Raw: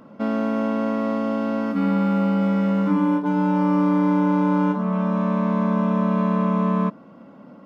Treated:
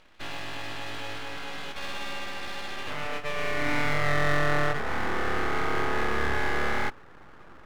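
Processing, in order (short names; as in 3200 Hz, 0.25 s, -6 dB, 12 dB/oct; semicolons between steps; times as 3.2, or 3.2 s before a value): band-pass sweep 2100 Hz -> 770 Hz, 2.66–4.56; full-wave rectifier; gain +7.5 dB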